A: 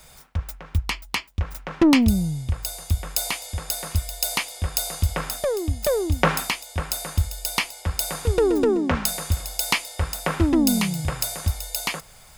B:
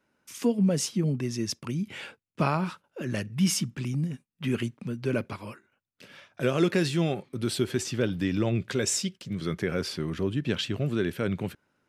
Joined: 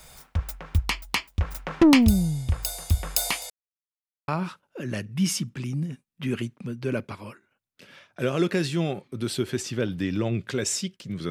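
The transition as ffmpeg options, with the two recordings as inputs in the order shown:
-filter_complex "[0:a]apad=whole_dur=11.3,atrim=end=11.3,asplit=2[a][b];[a]atrim=end=3.5,asetpts=PTS-STARTPTS,afade=t=out:st=3.496:d=0.004:c=hsin[c];[b]atrim=start=3.5:end=4.28,asetpts=PTS-STARTPTS,volume=0[d];[1:a]atrim=start=2.49:end=9.51,asetpts=PTS-STARTPTS,afade=t=in:d=0.004:c=hsin[e];[c][d][e]concat=n=3:v=0:a=1"

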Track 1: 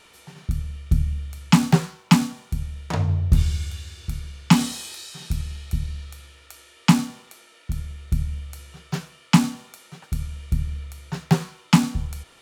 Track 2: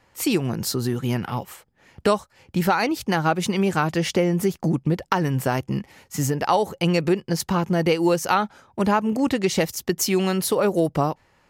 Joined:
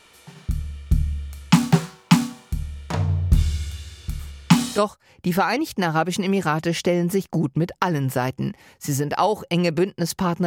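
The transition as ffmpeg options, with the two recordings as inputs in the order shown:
-filter_complex "[1:a]asplit=2[a][b];[0:a]apad=whole_dur=10.46,atrim=end=10.46,atrim=end=4.782[c];[b]atrim=start=2.078:end=7.76[d];[a]atrim=start=1.49:end=2.08,asetpts=PTS-STARTPTS,volume=-8.5dB,afade=t=in:d=0.004:c=hsin,afade=t=out:st=0.586:d=0.004:c=hsin,adelay=4190[e];[c][d]acrossfade=d=0.004:c1=hsin:c2=hsin[f];[f][e]amix=inputs=2:normalize=0"

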